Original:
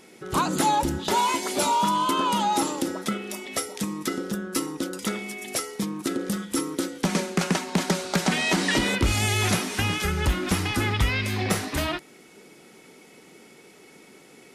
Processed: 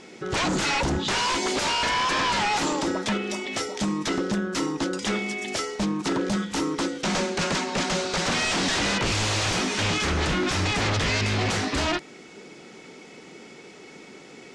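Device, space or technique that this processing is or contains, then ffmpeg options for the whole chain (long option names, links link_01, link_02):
synthesiser wavefolder: -af "aeval=exprs='0.0596*(abs(mod(val(0)/0.0596+3,4)-2)-1)':channel_layout=same,lowpass=frequency=7200:width=0.5412,lowpass=frequency=7200:width=1.3066,volume=5.5dB"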